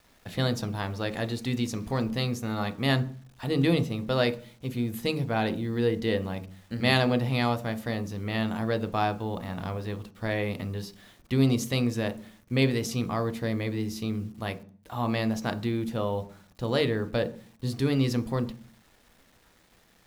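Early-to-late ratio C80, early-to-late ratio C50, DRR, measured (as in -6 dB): 21.5 dB, 17.0 dB, 9.5 dB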